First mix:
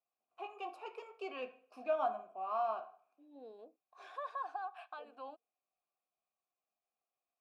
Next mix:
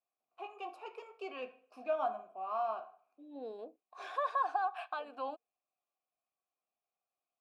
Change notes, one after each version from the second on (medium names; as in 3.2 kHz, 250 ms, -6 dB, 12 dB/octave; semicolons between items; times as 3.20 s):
second voice +8.5 dB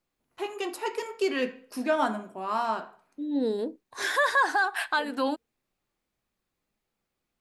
master: remove vowel filter a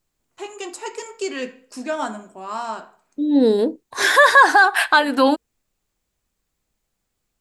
first voice: add resonant low-pass 7.5 kHz, resonance Q 5; second voice +12.0 dB